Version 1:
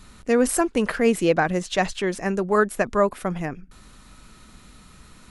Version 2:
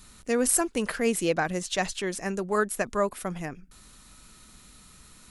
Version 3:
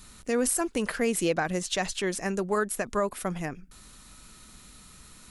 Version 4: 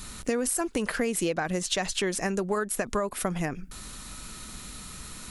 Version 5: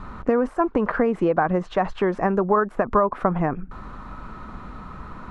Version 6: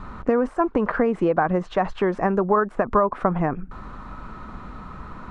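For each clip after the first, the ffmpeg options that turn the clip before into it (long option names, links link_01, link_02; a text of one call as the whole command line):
ffmpeg -i in.wav -af "highshelf=frequency=4300:gain=11.5,volume=-6.5dB" out.wav
ffmpeg -i in.wav -af "alimiter=limit=-17.5dB:level=0:latency=1:release=115,volume=1.5dB" out.wav
ffmpeg -i in.wav -af "acompressor=threshold=-34dB:ratio=6,volume=9dB" out.wav
ffmpeg -i in.wav -af "lowpass=frequency=1100:width_type=q:width=2.1,volume=6.5dB" out.wav
ffmpeg -i in.wav -af "aresample=22050,aresample=44100" out.wav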